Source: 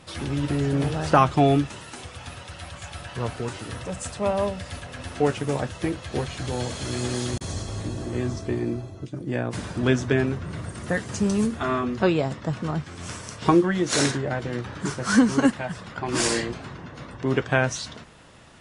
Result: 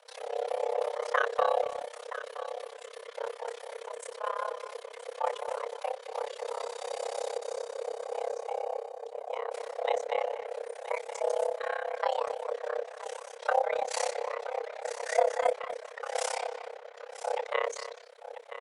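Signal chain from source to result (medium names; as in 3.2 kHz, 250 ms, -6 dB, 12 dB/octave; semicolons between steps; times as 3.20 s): octave divider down 2 oct, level +3 dB; frequency shift +440 Hz; on a send: delay 978 ms -12.5 dB; on the sum: AM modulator 33 Hz, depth 95%; speakerphone echo 240 ms, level -11 dB; trim -7.5 dB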